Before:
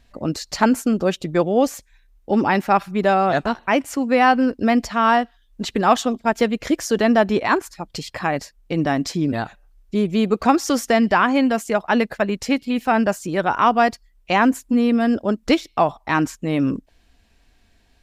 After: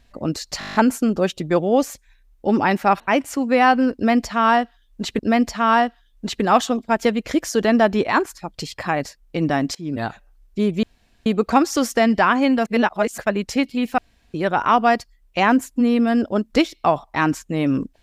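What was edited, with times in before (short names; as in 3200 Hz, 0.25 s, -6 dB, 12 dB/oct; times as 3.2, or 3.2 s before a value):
0.59 stutter 0.02 s, 9 plays
2.84–3.6 cut
4.55–5.79 loop, 2 plays
9.11–9.42 fade in, from -21 dB
10.19 insert room tone 0.43 s
11.59–12.11 reverse
12.91–13.27 room tone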